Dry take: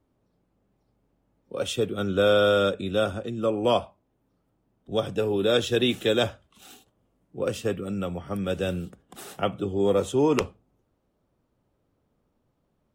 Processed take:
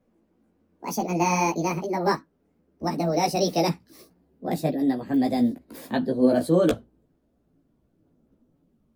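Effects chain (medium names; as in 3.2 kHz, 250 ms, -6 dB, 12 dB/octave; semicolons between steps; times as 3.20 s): gliding tape speed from 187% -> 102%; chorus voices 6, 1 Hz, delay 15 ms, depth 3.6 ms; ten-band graphic EQ 250 Hz +9 dB, 1 kHz -6 dB, 2 kHz -3 dB, 4 kHz -3 dB, 8 kHz -3 dB; trim +4 dB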